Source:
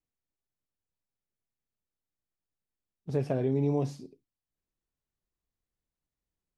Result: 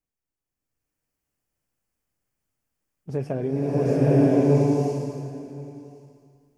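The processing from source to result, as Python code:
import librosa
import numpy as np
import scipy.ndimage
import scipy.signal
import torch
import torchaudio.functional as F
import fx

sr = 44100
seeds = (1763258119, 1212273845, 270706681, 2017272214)

y = fx.peak_eq(x, sr, hz=3800.0, db=-10.0, octaves=0.39)
y = y + 10.0 ** (-22.0 / 20.0) * np.pad(y, (int(1071 * sr / 1000.0), 0))[:len(y)]
y = fx.rev_bloom(y, sr, seeds[0], attack_ms=980, drr_db=-10.0)
y = y * librosa.db_to_amplitude(1.5)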